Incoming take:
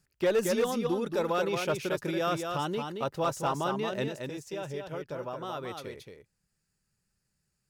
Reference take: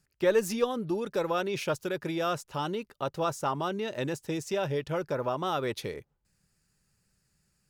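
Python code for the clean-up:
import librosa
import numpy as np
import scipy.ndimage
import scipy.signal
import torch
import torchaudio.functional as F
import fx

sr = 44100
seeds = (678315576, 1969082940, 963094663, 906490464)

y = fx.fix_declip(x, sr, threshold_db=-20.5)
y = fx.fix_echo_inverse(y, sr, delay_ms=225, level_db=-5.5)
y = fx.fix_level(y, sr, at_s=4.08, step_db=7.5)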